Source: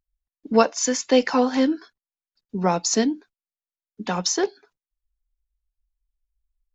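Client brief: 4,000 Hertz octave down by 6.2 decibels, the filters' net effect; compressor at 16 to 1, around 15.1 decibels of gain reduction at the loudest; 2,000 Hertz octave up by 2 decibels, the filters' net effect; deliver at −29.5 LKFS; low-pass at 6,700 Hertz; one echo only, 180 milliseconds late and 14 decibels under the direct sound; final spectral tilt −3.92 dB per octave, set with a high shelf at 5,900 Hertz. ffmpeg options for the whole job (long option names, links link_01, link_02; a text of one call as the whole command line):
ffmpeg -i in.wav -af "lowpass=6700,equalizer=frequency=2000:width_type=o:gain=4.5,equalizer=frequency=4000:width_type=o:gain=-7.5,highshelf=frequency=5900:gain=-3.5,acompressor=threshold=-26dB:ratio=16,aecho=1:1:180:0.2,volume=3dB" out.wav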